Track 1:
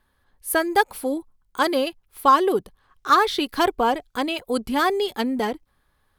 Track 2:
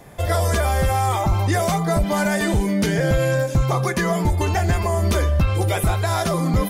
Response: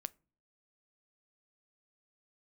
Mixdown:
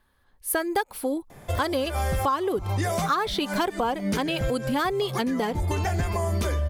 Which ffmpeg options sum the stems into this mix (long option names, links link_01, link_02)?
-filter_complex "[0:a]volume=0.5dB,asplit=2[link_01][link_02];[1:a]adelay=1300,volume=-3dB[link_03];[link_02]apad=whole_len=352587[link_04];[link_03][link_04]sidechaincompress=threshold=-35dB:ratio=8:attack=27:release=130[link_05];[link_01][link_05]amix=inputs=2:normalize=0,acompressor=threshold=-22dB:ratio=5"